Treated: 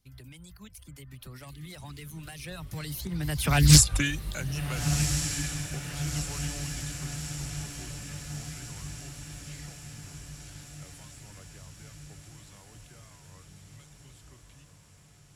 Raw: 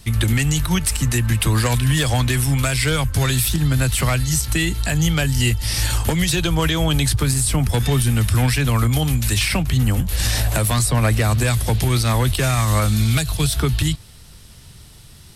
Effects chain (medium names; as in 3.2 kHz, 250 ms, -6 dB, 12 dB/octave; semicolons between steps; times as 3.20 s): Doppler pass-by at 3.73 s, 47 m/s, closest 2.8 m; reverb removal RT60 0.53 s; echo that smears into a reverb 1403 ms, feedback 61%, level -8 dB; loudspeaker Doppler distortion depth 0.4 ms; trim +7 dB